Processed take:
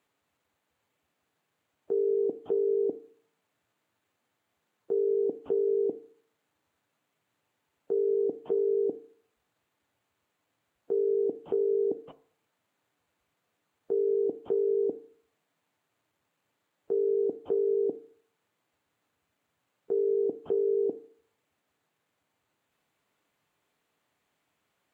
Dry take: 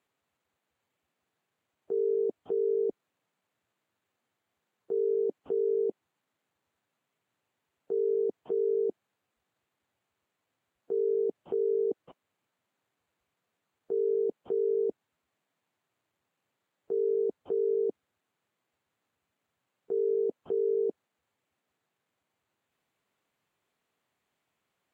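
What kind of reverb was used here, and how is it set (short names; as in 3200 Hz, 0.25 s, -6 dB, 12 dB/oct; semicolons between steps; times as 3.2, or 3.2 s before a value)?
FDN reverb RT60 0.55 s, low-frequency decay 0.9×, high-frequency decay 0.25×, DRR 12.5 dB; gain +3.5 dB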